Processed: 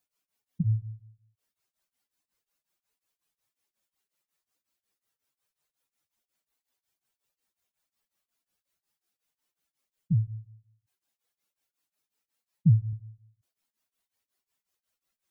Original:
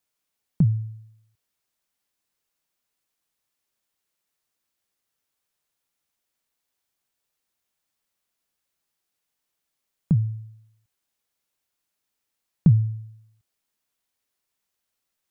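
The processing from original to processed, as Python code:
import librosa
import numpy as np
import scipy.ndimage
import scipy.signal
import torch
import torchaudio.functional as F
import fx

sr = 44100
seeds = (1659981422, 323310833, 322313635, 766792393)

y = fx.spec_expand(x, sr, power=1.9)
y = fx.highpass(y, sr, hz=84.0, slope=6, at=(10.12, 12.93))
y = y * np.abs(np.cos(np.pi * 5.5 * np.arange(len(y)) / sr))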